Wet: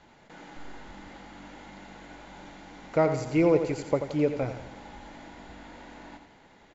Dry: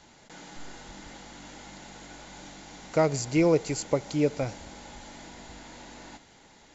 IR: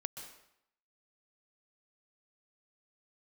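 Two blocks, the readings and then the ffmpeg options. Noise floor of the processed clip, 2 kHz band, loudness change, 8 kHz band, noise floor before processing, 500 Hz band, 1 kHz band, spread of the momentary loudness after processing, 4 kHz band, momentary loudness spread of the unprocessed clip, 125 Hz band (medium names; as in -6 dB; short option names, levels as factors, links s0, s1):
-57 dBFS, -0.5 dB, 0.0 dB, no reading, -56 dBFS, +0.5 dB, +0.5 dB, 23 LU, -7.0 dB, 21 LU, -1.0 dB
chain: -af "bass=f=250:g=-1,treble=f=4000:g=-15,aecho=1:1:86|172|258|344|430:0.355|0.167|0.0784|0.0368|0.0173"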